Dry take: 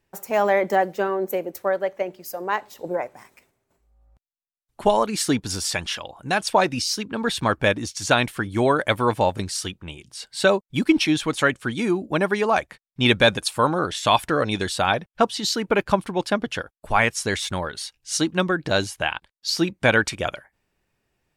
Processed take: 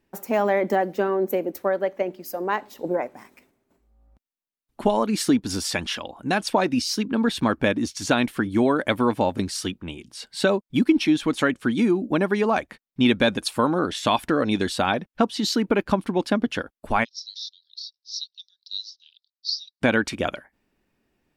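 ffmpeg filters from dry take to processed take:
-filter_complex "[0:a]asplit=3[a][b][c];[a]afade=t=out:st=17.03:d=0.02[d];[b]asuperpass=centerf=4600:order=8:qfactor=2.4,afade=t=in:st=17.03:d=0.02,afade=t=out:st=19.8:d=0.02[e];[c]afade=t=in:st=19.8:d=0.02[f];[d][e][f]amix=inputs=3:normalize=0,equalizer=f=125:t=o:w=1:g=-4,equalizer=f=250:t=o:w=1:g=10,equalizer=f=8k:t=o:w=1:g=-4,acompressor=threshold=-19dB:ratio=2"

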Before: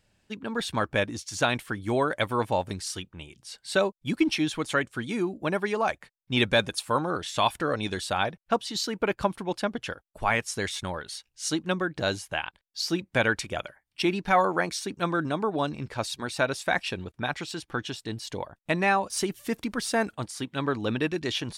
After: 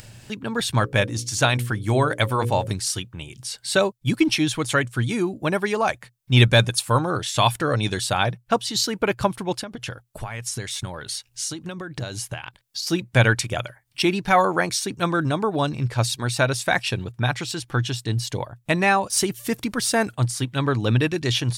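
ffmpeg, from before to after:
-filter_complex "[0:a]asettb=1/sr,asplit=3[a][b][c];[a]atrim=end=0.774[d];[b]atrim=start=0.77:end=2.67,asetpts=PTS-STARTPTS,afade=t=in:d=0.004:c=qsin,afade=t=out:st=1.896:d=0.004:c=qsin,bandreject=f=60:t=h:w=6,bandreject=f=120:t=h:w=6,bandreject=f=180:t=h:w=6,bandreject=f=240:t=h:w=6,bandreject=f=300:t=h:w=6,bandreject=f=360:t=h:w=6,bandreject=f=420:t=h:w=6,bandreject=f=480:t=h:w=6,bandreject=f=540:t=h:w=6[e];[c]atrim=start=2.666[f];[d][e]acrossfade=d=0.004:c1=hsin:c2=qsin[g];[g][f]acrossfade=d=0.004:c1=qsin:c2=hsin,asettb=1/sr,asplit=3[h][i][j];[h]atrim=end=9.594[k];[i]atrim=start=9.59:end=12.87,asetpts=PTS-STARTPTS,afade=t=in:d=0.004:c=qsin,afade=t=out:st=3.276:d=0.004:c=qsin,acompressor=threshold=-33dB:ratio=16:attack=3.2:release=140:knee=1:detection=peak[l];[j]atrim=start=12.866[m];[k][l]acrossfade=d=0.004:c1=hsin:c2=qsin[n];[n][m]acrossfade=d=0.004:c1=qsin:c2=hsin,equalizer=f=120:t=o:w=0.36:g=15,acompressor=mode=upward:threshold=-35dB:ratio=2.5,highshelf=f=5.2k:g=8,volume=4dB"

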